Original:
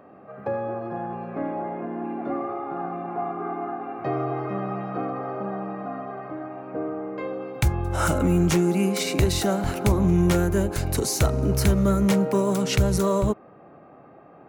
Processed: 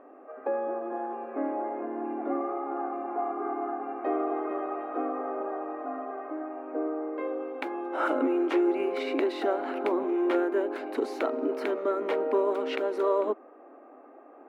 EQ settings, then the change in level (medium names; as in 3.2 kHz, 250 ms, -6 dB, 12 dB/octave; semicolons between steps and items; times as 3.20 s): brick-wall FIR high-pass 240 Hz; distance through air 480 m; 0.0 dB